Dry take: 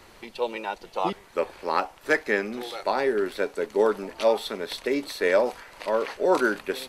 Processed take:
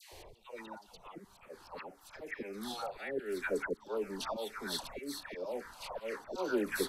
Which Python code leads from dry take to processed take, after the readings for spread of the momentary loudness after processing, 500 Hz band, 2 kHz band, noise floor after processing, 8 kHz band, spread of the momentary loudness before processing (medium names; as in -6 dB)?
17 LU, -14.5 dB, -13.0 dB, -62 dBFS, -4.0 dB, 9 LU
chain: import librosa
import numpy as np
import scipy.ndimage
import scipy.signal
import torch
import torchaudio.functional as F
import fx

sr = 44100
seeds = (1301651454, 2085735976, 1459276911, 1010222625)

y = fx.env_phaser(x, sr, low_hz=220.0, high_hz=1900.0, full_db=-17.5)
y = fx.auto_swell(y, sr, attack_ms=537.0)
y = fx.dispersion(y, sr, late='lows', ms=123.0, hz=1100.0)
y = y * 10.0 ** (2.0 / 20.0)